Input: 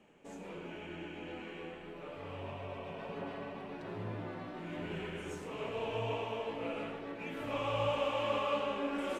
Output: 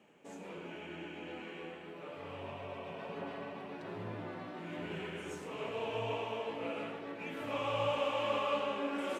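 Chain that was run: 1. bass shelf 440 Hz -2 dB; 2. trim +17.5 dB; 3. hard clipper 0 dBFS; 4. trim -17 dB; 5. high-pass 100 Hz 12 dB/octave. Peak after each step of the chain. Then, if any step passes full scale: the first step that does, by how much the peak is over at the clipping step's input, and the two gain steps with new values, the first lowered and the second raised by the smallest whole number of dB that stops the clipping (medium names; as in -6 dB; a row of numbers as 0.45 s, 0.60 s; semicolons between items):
-22.5 dBFS, -5.0 dBFS, -5.0 dBFS, -22.0 dBFS, -21.5 dBFS; nothing clips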